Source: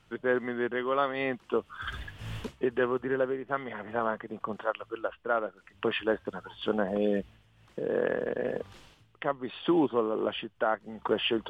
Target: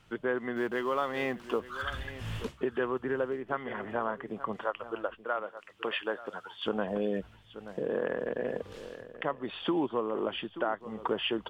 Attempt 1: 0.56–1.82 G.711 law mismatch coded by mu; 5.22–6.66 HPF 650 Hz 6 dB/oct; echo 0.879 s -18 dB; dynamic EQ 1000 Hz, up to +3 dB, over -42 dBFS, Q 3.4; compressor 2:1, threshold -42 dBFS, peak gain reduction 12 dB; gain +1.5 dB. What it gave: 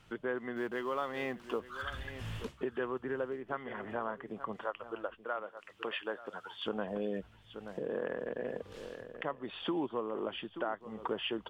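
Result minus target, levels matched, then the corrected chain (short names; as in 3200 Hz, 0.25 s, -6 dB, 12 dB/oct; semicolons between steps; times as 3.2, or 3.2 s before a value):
compressor: peak gain reduction +5 dB
0.56–1.82 G.711 law mismatch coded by mu; 5.22–6.66 HPF 650 Hz 6 dB/oct; echo 0.879 s -18 dB; dynamic EQ 1000 Hz, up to +3 dB, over -42 dBFS, Q 3.4; compressor 2:1, threshold -32 dBFS, peak gain reduction 7 dB; gain +1.5 dB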